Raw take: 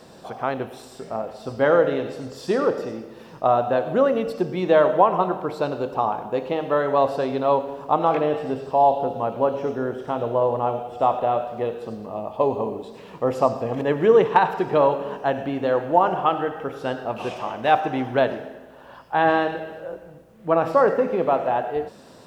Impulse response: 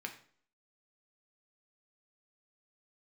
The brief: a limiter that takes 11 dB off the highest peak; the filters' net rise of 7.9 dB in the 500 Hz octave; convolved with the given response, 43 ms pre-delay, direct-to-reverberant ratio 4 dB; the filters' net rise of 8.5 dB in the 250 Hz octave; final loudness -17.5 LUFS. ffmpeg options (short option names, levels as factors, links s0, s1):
-filter_complex "[0:a]equalizer=f=250:t=o:g=8,equalizer=f=500:t=o:g=7.5,alimiter=limit=0.398:level=0:latency=1,asplit=2[s0][s1];[1:a]atrim=start_sample=2205,adelay=43[s2];[s1][s2]afir=irnorm=-1:irlink=0,volume=0.631[s3];[s0][s3]amix=inputs=2:normalize=0,volume=1.06"